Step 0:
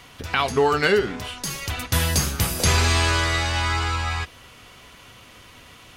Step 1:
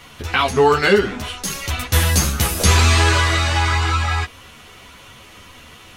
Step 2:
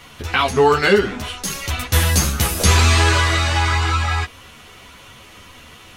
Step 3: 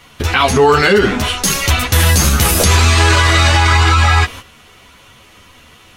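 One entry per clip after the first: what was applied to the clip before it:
notch filter 4,800 Hz, Q 18; string-ensemble chorus; level +7.5 dB
no processing that can be heard
noise gate −38 dBFS, range −12 dB; boost into a limiter +12 dB; level −1 dB

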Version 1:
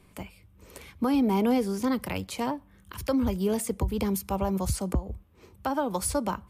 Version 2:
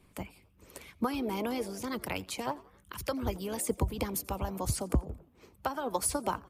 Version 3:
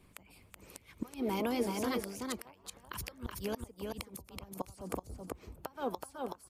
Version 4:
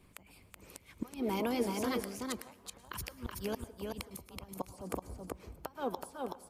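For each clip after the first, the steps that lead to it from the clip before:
echo with shifted repeats 86 ms, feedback 46%, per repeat +93 Hz, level −20 dB; harmonic and percussive parts rebalanced harmonic −12 dB
gate with flip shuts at −24 dBFS, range −24 dB; single-tap delay 376 ms −3.5 dB
dense smooth reverb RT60 0.68 s, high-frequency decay 0.75×, pre-delay 95 ms, DRR 17 dB

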